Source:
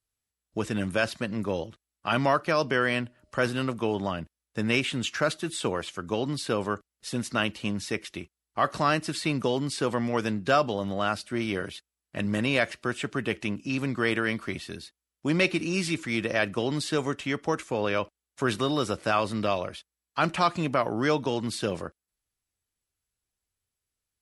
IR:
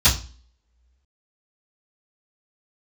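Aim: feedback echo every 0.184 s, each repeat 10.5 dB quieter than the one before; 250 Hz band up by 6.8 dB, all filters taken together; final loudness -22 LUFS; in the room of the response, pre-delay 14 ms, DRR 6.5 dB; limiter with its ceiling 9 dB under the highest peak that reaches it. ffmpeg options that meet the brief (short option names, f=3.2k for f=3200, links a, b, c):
-filter_complex "[0:a]equalizer=f=250:t=o:g=8.5,alimiter=limit=-17dB:level=0:latency=1,aecho=1:1:184|368|552:0.299|0.0896|0.0269,asplit=2[a][b];[1:a]atrim=start_sample=2205,adelay=14[c];[b][c]afir=irnorm=-1:irlink=0,volume=-25dB[d];[a][d]amix=inputs=2:normalize=0,volume=4.5dB"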